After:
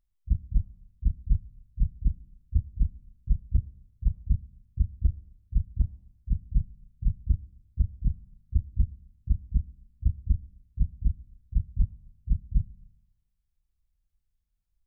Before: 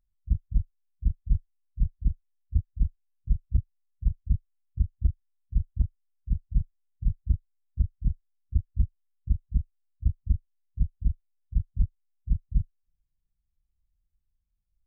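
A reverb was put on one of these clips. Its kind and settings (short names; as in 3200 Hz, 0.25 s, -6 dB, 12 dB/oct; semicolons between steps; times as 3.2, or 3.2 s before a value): Schroeder reverb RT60 0.96 s, combs from 28 ms, DRR 17.5 dB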